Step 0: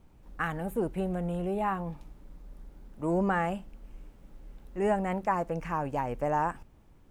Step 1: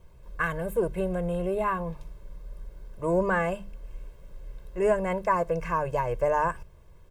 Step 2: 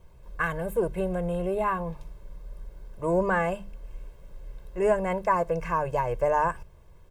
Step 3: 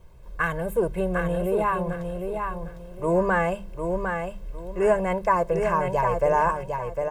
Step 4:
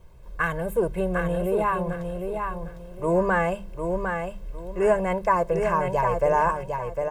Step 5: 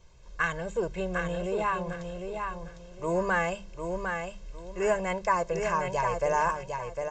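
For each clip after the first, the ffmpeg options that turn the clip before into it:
ffmpeg -i in.wav -af "bandreject=frequency=50:width_type=h:width=6,bandreject=frequency=100:width_type=h:width=6,bandreject=frequency=150:width_type=h:width=6,bandreject=frequency=200:width_type=h:width=6,aecho=1:1:1.9:0.93,volume=1.5dB" out.wav
ffmpeg -i in.wav -af "equalizer=frequency=800:width=5.2:gain=4.5" out.wav
ffmpeg -i in.wav -af "aecho=1:1:754|1508|2262:0.531|0.138|0.0359,volume=2.5dB" out.wav
ffmpeg -i in.wav -af anull out.wav
ffmpeg -i in.wav -af "crystalizer=i=6:c=0,aresample=16000,aresample=44100,volume=-7dB" out.wav

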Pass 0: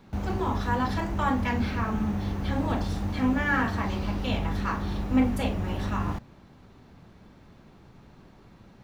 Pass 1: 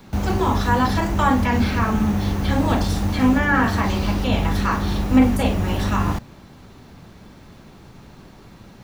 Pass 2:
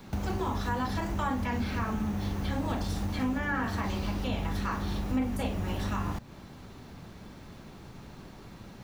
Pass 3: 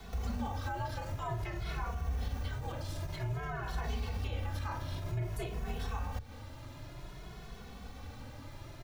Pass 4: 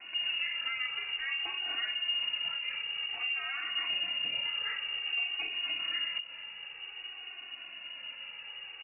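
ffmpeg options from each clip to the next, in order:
ffmpeg -i in.wav -filter_complex "[0:a]highshelf=frequency=4600:gain=9,acrossover=split=510|1600[link_01][link_02][link_03];[link_03]alimiter=level_in=7.5dB:limit=-24dB:level=0:latency=1:release=31,volume=-7.5dB[link_04];[link_01][link_02][link_04]amix=inputs=3:normalize=0,volume=8dB" out.wav
ffmpeg -i in.wav -af "acompressor=threshold=-29dB:ratio=2.5,volume=-3dB" out.wav
ffmpeg -i in.wav -filter_complex "[0:a]alimiter=level_in=5.5dB:limit=-24dB:level=0:latency=1:release=127,volume=-5.5dB,afreqshift=-140,asplit=2[link_01][link_02];[link_02]adelay=2.3,afreqshift=0.53[link_03];[link_01][link_03]amix=inputs=2:normalize=1,volume=3.5dB" out.wav
ffmpeg -i in.wav -af "aecho=1:1:434:0.119,lowpass=frequency=2500:width_type=q:width=0.5098,lowpass=frequency=2500:width_type=q:width=0.6013,lowpass=frequency=2500:width_type=q:width=0.9,lowpass=frequency=2500:width_type=q:width=2.563,afreqshift=-2900,volume=1.5dB" out.wav

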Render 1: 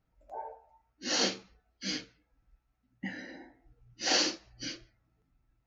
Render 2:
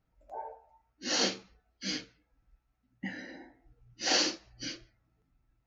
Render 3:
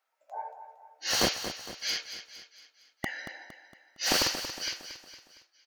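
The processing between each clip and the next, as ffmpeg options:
ffmpeg -i in.wav -af anull out.wav
ffmpeg -i in.wav -filter_complex "[0:a]acrossover=split=610[link_01][link_02];[link_01]acrusher=bits=4:mix=0:aa=0.000001[link_03];[link_02]asoftclip=type=hard:threshold=-30dB[link_04];[link_03][link_04]amix=inputs=2:normalize=0,aecho=1:1:230|460|690|920|1150:0.299|0.143|0.0688|0.033|0.0158,volume=5.5dB" out.wav

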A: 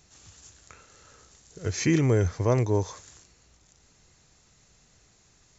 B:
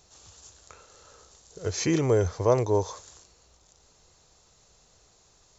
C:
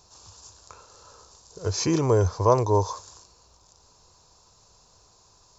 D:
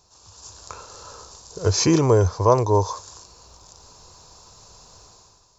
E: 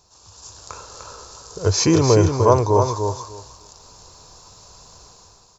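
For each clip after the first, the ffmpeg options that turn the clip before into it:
ffmpeg -i in.wav -af "equalizer=frequency=125:width_type=o:width=1:gain=-4,equalizer=frequency=250:width_type=o:width=1:gain=-5,equalizer=frequency=500:width_type=o:width=1:gain=5,equalizer=frequency=1000:width_type=o:width=1:gain=4,equalizer=frequency=2000:width_type=o:width=1:gain=-6,equalizer=frequency=4000:width_type=o:width=1:gain=3" out.wav
ffmpeg -i in.wav -af "equalizer=frequency=100:width_type=o:width=0.33:gain=5,equalizer=frequency=1000:width_type=o:width=0.33:gain=10,equalizer=frequency=2000:width_type=o:width=0.33:gain=-9,equalizer=frequency=3150:width_type=o:width=0.33:gain=-4,equalizer=frequency=5000:width_type=o:width=0.33:gain=6,volume=1dB" out.wav
ffmpeg -i in.wav -af "dynaudnorm=framelen=100:gausssize=9:maxgain=12dB,volume=-2.5dB" out.wav
ffmpeg -i in.wav -af "aecho=1:1:300|600|900:0.501|0.0852|0.0145,volume=1.5dB" out.wav

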